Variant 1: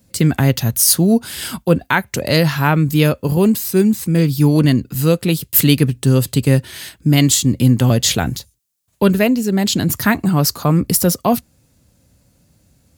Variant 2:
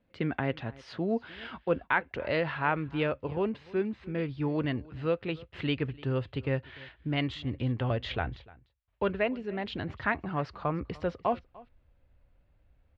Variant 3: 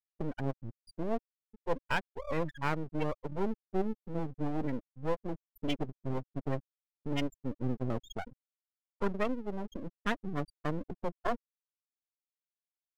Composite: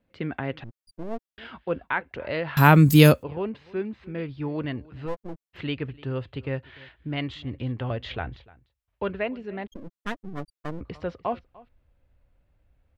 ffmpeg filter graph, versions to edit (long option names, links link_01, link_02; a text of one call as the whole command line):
ffmpeg -i take0.wav -i take1.wav -i take2.wav -filter_complex "[2:a]asplit=3[link_01][link_02][link_03];[1:a]asplit=5[link_04][link_05][link_06][link_07][link_08];[link_04]atrim=end=0.642[link_09];[link_01]atrim=start=0.638:end=1.382[link_10];[link_05]atrim=start=1.378:end=2.572[link_11];[0:a]atrim=start=2.568:end=3.232[link_12];[link_06]atrim=start=3.228:end=5.09[link_13];[link_02]atrim=start=5.05:end=5.57[link_14];[link_07]atrim=start=5.53:end=9.672[link_15];[link_03]atrim=start=9.668:end=10.812[link_16];[link_08]atrim=start=10.808[link_17];[link_09][link_10]acrossfade=duration=0.004:curve1=hsin:curve2=hsin[link_18];[link_18][link_11]acrossfade=duration=0.004:curve1=hsin:curve2=hsin[link_19];[link_19][link_12]acrossfade=duration=0.004:curve1=hsin:curve2=hsin[link_20];[link_20][link_13]acrossfade=duration=0.004:curve1=hsin:curve2=hsin[link_21];[link_21][link_14]acrossfade=duration=0.04:curve1=tri:curve2=tri[link_22];[link_22][link_15]acrossfade=duration=0.04:curve1=tri:curve2=tri[link_23];[link_23][link_16]acrossfade=duration=0.004:curve1=hsin:curve2=hsin[link_24];[link_24][link_17]acrossfade=duration=0.004:curve1=hsin:curve2=hsin" out.wav